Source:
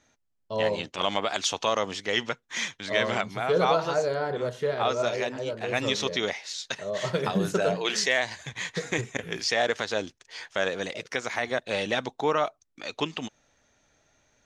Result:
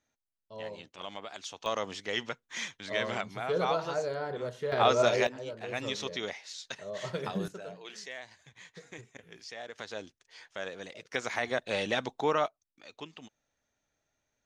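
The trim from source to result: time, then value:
-15 dB
from 1.66 s -6.5 dB
from 4.72 s +2 dB
from 5.27 s -8 dB
from 7.48 s -18.5 dB
from 9.78 s -11.5 dB
from 11.14 s -3 dB
from 12.47 s -15 dB

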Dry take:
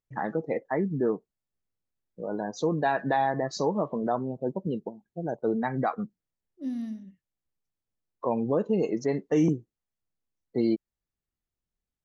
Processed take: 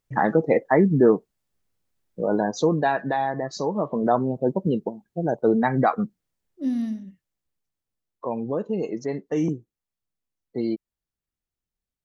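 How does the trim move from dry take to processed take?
2.34 s +10 dB
3.14 s +0.5 dB
3.66 s +0.5 dB
4.12 s +7.5 dB
6.81 s +7.5 dB
8.25 s -1 dB

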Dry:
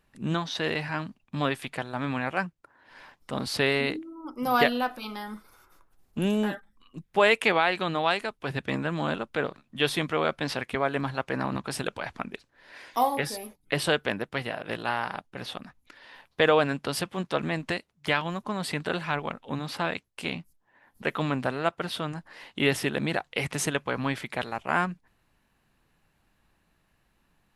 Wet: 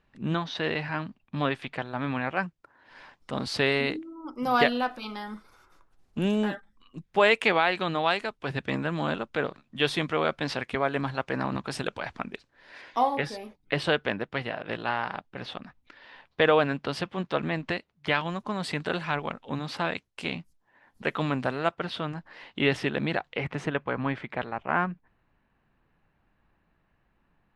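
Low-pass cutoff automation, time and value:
4 kHz
from 2.43 s 7 kHz
from 12.81 s 4.2 kHz
from 18.14 s 7.1 kHz
from 21.74 s 4.2 kHz
from 23.36 s 2.2 kHz

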